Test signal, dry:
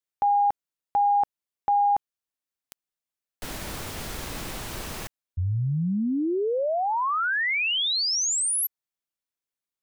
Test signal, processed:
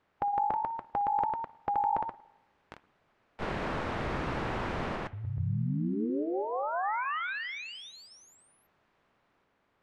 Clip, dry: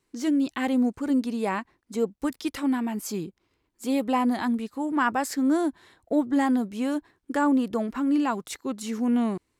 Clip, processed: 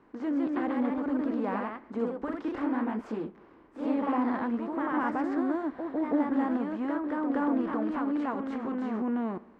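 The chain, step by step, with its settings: per-bin compression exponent 0.6; LPF 1600 Hz 12 dB/oct; spring tank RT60 1 s, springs 59 ms, chirp 70 ms, DRR 19 dB; flange 0.7 Hz, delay 0.7 ms, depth 5.3 ms, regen -77%; echoes that change speed 0.171 s, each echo +1 st, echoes 2; gain -4.5 dB

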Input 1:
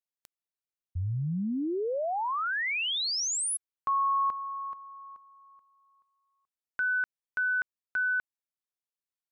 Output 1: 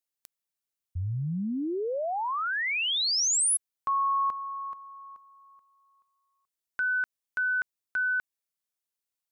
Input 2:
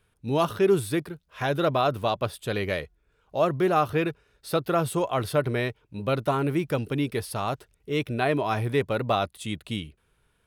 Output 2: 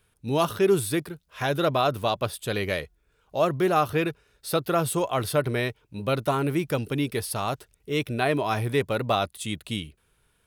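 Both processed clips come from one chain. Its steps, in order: high shelf 4300 Hz +7 dB

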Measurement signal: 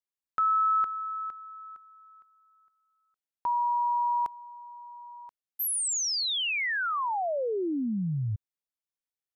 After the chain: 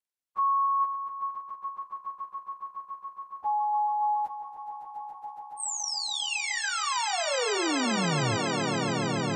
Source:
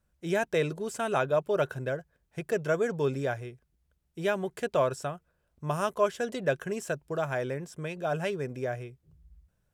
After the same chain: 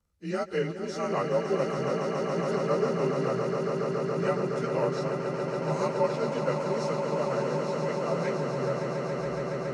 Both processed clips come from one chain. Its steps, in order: inharmonic rescaling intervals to 90%; swelling echo 0.14 s, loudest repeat 8, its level -8.5 dB

